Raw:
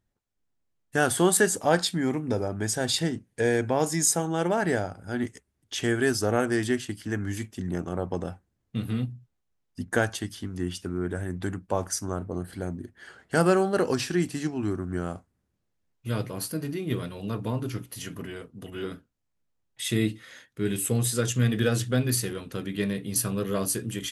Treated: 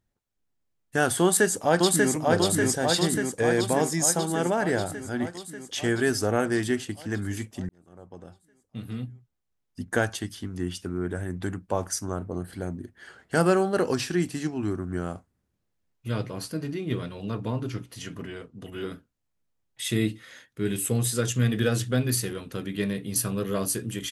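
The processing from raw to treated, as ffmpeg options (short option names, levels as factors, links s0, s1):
-filter_complex "[0:a]asplit=2[s0][s1];[s1]afade=t=in:st=1.21:d=0.01,afade=t=out:st=2.13:d=0.01,aecho=0:1:590|1180|1770|2360|2950|3540|4130|4720|5310|5900|6490|7080:0.841395|0.588977|0.412284|0.288599|0.202019|0.141413|0.0989893|0.0692925|0.0485048|0.0339533|0.0237673|0.0166371[s2];[s0][s2]amix=inputs=2:normalize=0,asettb=1/sr,asplit=3[s3][s4][s5];[s3]atrim=end=16.084[s6];[s4]atrim=start=16.08:end=18.65,asetpts=PTS-STARTPTS,afade=t=in:d=0.004:c=qsin,afade=t=out:st=2.566:d=0.004:c=qsin,lowpass=7500[s7];[s5]atrim=start=18.646[s8];[s6][s7]acrossfade=d=0.004:c1=hsin:c2=qsin[s9];[s9][s8]acrossfade=d=0.004:c1=qsin:c2=hsin,asplit=2[s10][s11];[s10]atrim=end=7.69,asetpts=PTS-STARTPTS,afade=t=out:st=7.686:d=0.004:c=hsin[s12];[s11]atrim=start=7.69,asetpts=PTS-STARTPTS,afade=t=in:d=2.37[s13];[s12][s13]concat=n=2:v=0:a=1"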